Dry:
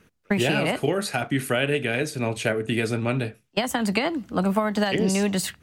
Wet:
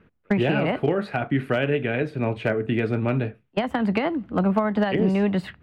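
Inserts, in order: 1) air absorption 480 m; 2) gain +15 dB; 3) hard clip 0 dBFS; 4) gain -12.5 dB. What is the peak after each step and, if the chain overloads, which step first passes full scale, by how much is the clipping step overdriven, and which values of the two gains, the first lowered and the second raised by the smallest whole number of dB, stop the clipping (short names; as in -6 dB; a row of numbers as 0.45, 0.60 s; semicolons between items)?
-12.0, +3.0, 0.0, -12.5 dBFS; step 2, 3.0 dB; step 2 +12 dB, step 4 -9.5 dB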